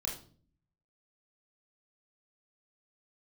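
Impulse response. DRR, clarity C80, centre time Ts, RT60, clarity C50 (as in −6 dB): −1.5 dB, 13.5 dB, 27 ms, 0.45 s, 7.5 dB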